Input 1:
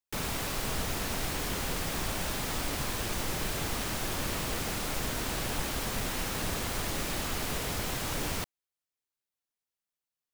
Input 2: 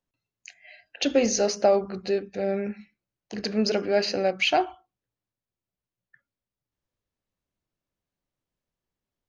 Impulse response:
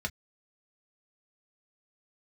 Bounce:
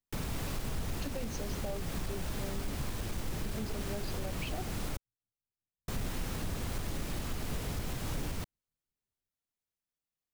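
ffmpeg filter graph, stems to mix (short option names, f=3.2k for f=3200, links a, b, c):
-filter_complex "[0:a]asoftclip=type=tanh:threshold=-26dB,volume=-5dB,asplit=3[a][b][c];[a]atrim=end=4.97,asetpts=PTS-STARTPTS,afade=t=out:st=4.966:d=0.004:c=hsin[d];[b]atrim=start=4.97:end=5.88,asetpts=PTS-STARTPTS,volume=0[e];[c]atrim=start=5.88,asetpts=PTS-STARTPTS,afade=t=in:d=0.004:c=hsin[f];[d][e][f]concat=n=3:v=0:a=1[g];[1:a]acrossover=split=470[h][i];[h]aeval=exprs='val(0)*(1-0.7/2+0.7/2*cos(2*PI*5.5*n/s))':c=same[j];[i]aeval=exprs='val(0)*(1-0.7/2-0.7/2*cos(2*PI*5.5*n/s))':c=same[k];[j][k]amix=inputs=2:normalize=0,volume=-15dB[l];[g][l]amix=inputs=2:normalize=0,lowshelf=f=310:g=11,alimiter=level_in=3dB:limit=-24dB:level=0:latency=1:release=275,volume=-3dB"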